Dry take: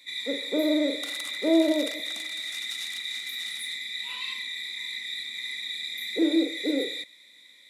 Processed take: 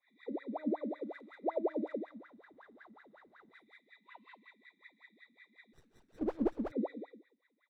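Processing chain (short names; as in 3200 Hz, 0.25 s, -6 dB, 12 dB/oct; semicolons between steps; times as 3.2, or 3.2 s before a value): 2.04–3.51 median filter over 15 samples; early reflections 32 ms -3.5 dB, 69 ms -8.5 dB; in parallel at -0.5 dB: limiter -19 dBFS, peak gain reduction 8.5 dB; on the sum: high shelf 2600 Hz -12 dB; on a send: feedback echo 0.14 s, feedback 27%, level -8 dB; on the sum: wah 5.4 Hz 210–1700 Hz, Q 22; 5.73–6.72 running maximum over 17 samples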